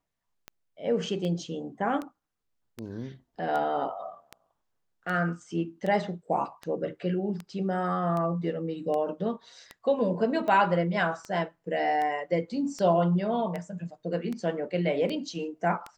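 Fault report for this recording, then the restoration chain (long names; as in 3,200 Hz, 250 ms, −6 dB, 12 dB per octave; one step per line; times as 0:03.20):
scratch tick 78 rpm −22 dBFS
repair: click removal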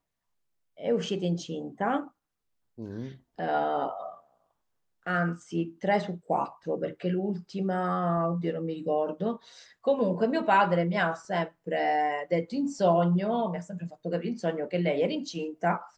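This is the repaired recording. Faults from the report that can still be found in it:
none of them is left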